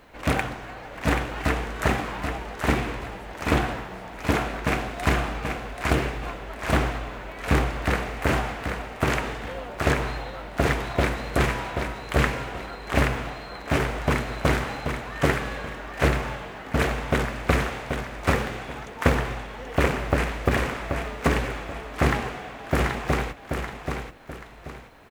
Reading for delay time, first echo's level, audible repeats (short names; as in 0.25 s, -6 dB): 0.782 s, -6.0 dB, 2